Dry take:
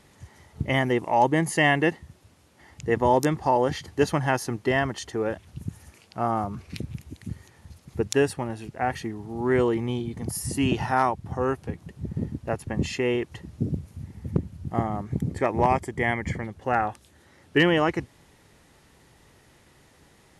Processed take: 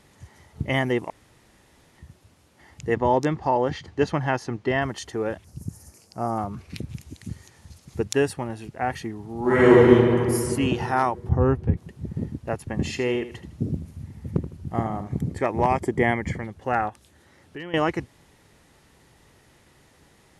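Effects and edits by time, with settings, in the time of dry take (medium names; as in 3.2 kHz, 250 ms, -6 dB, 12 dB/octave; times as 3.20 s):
1.10–1.98 s: room tone
2.95–4.82 s: distance through air 96 m
5.44–6.38 s: FFT filter 570 Hz 0 dB, 3.6 kHz -11 dB, 5.1 kHz +6 dB
6.89–8.03 s: peaking EQ 6.4 kHz +6.5 dB 1.6 oct
9.40–9.90 s: reverb throw, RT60 2.5 s, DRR -10 dB
11.29–11.77 s: RIAA curve playback
12.71–15.28 s: feedback delay 79 ms, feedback 31%, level -12 dB
15.80–16.34 s: peaking EQ 320 Hz +12 dB -> +0.5 dB 2.9 oct
16.89–17.74 s: compression 2.5:1, threshold -42 dBFS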